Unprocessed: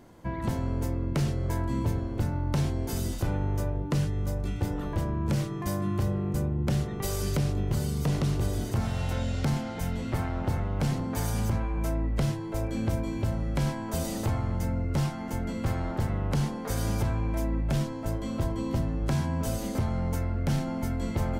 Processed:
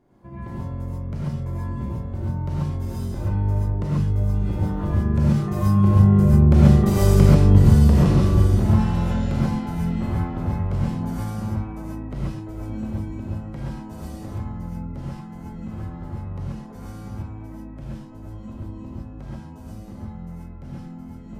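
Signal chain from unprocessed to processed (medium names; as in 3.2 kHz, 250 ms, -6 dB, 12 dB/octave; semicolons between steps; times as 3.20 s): Doppler pass-by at 7.19 s, 9 m/s, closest 10 m; treble shelf 2 kHz -10.5 dB; gated-style reverb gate 160 ms rising, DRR -6.5 dB; trim +6 dB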